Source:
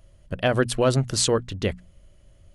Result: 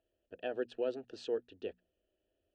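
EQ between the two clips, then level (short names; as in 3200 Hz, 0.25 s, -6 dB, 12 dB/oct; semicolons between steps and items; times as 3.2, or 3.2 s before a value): vowel filter e; LPF 3800 Hz 12 dB/oct; fixed phaser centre 550 Hz, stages 6; +2.0 dB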